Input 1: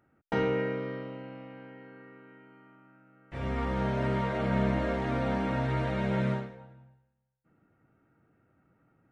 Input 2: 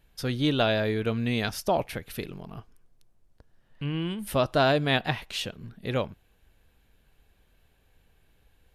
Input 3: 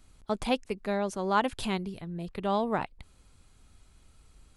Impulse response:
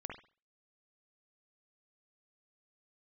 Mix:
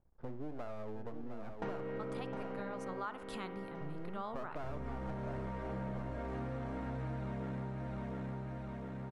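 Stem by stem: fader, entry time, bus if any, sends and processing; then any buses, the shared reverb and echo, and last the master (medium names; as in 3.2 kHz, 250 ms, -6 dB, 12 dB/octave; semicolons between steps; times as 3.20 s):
+1.0 dB, 1.30 s, no send, echo send -6.5 dB, peaking EQ 3 kHz -9.5 dB 1.5 oct; gain riding within 3 dB 0.5 s; saturation -27.5 dBFS, distortion -14 dB
-8.5 dB, 0.00 s, send -5 dB, echo send -8 dB, low-pass 1.1 kHz 24 dB/octave; half-wave rectifier
-14.0 dB, 1.70 s, send -6.5 dB, no echo send, peaking EQ 1.3 kHz +12.5 dB 0.82 oct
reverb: on, pre-delay 46 ms
echo: feedback delay 709 ms, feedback 50%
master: compression 6:1, threshold -38 dBFS, peak gain reduction 13.5 dB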